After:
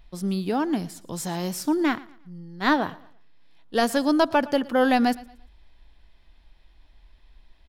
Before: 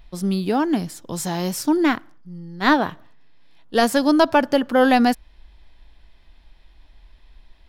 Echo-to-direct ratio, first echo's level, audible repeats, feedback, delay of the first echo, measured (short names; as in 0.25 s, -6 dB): -20.5 dB, -21.0 dB, 2, 34%, 0.115 s